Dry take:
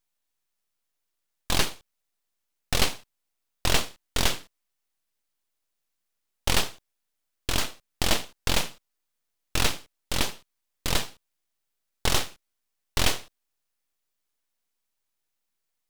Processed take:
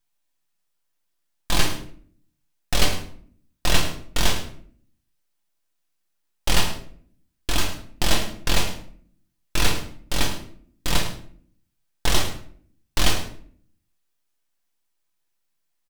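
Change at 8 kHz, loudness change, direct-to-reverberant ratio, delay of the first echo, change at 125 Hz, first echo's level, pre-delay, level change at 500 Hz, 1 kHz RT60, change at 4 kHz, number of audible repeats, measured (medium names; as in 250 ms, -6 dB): +2.0 dB, +2.5 dB, 0.5 dB, 106 ms, +4.5 dB, -13.0 dB, 3 ms, +2.5 dB, 0.50 s, +2.5 dB, 1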